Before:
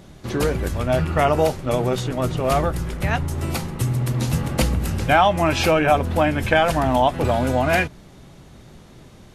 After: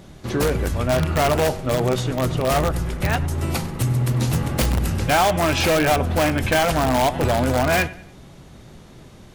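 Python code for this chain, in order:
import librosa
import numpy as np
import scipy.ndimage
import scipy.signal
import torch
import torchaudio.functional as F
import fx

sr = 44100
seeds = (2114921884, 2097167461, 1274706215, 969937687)

p1 = fx.echo_feedback(x, sr, ms=98, feedback_pct=38, wet_db=-19.5)
p2 = (np.mod(10.0 ** (12.5 / 20.0) * p1 + 1.0, 2.0) - 1.0) / 10.0 ** (12.5 / 20.0)
p3 = p1 + F.gain(torch.from_numpy(p2), -4.5).numpy()
y = F.gain(torch.from_numpy(p3), -3.0).numpy()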